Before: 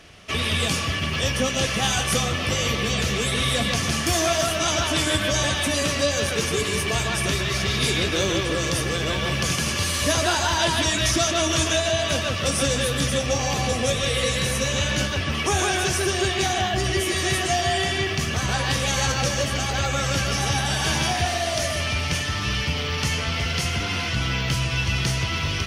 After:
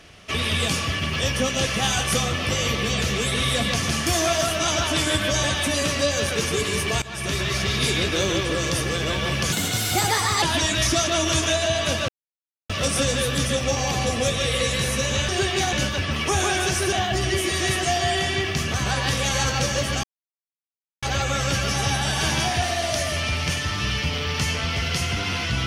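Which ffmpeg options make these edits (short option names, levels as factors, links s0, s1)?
-filter_complex "[0:a]asplit=9[s0][s1][s2][s3][s4][s5][s6][s7][s8];[s0]atrim=end=7.02,asetpts=PTS-STARTPTS,afade=t=out:st=7.016:d=0.004:c=hsin:silence=0.133352[s9];[s1]atrim=start=7.02:end=9.524,asetpts=PTS-STARTPTS,afade=t=in:d=0.39:silence=0.133352[s10];[s2]atrim=start=9.52:end=10.66,asetpts=PTS-STARTPTS,asetrate=55566,aresample=44100[s11];[s3]atrim=start=10.656:end=12.32,asetpts=PTS-STARTPTS,afade=t=out:st=1.66:d=0.004:c=hsin,apad=pad_dur=0.61[s12];[s4]atrim=start=12.32:end=14.912,asetpts=PTS-STARTPTS,afade=t=in:d=0.004:c=hsin[s13];[s5]atrim=start=16.108:end=16.552[s14];[s6]atrim=start=14.908:end=16.112[s15];[s7]atrim=start=16.548:end=19.66,asetpts=PTS-STARTPTS,afade=t=out:st=3.108:d=0.004:c=hsin,apad=pad_dur=0.99[s16];[s8]atrim=start=19.66,asetpts=PTS-STARTPTS,afade=t=in:d=0.004:c=hsin[s17];[s9][s10]concat=n=2:v=0:a=1[s18];[s18][s11]acrossfade=d=0.004:c1=hsin:c2=hsin[s19];[s12][s13]concat=n=2:v=0:a=1[s20];[s19][s20]acrossfade=d=0.004:c1=hsin:c2=hsin[s21];[s21][s14]acrossfade=d=0.004:c1=hsin:c2=hsin[s22];[s22][s15]acrossfade=d=0.004:c1=hsin:c2=hsin[s23];[s16][s17]concat=n=2:v=0:a=1[s24];[s23][s24]acrossfade=d=0.004:c1=hsin:c2=hsin"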